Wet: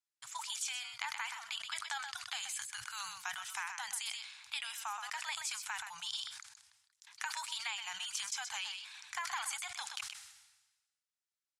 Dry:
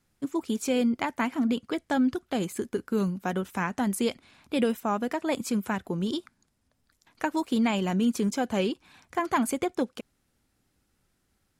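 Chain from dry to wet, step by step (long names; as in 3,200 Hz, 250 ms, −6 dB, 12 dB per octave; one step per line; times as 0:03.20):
meter weighting curve ITU-R 468
noise gate −59 dBFS, range −25 dB
Chebyshev band-stop filter 120–820 Hz, order 4
downward compressor, threshold −35 dBFS, peak gain reduction 14 dB
single-tap delay 126 ms −10.5 dB
level that may fall only so fast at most 53 dB per second
level −3 dB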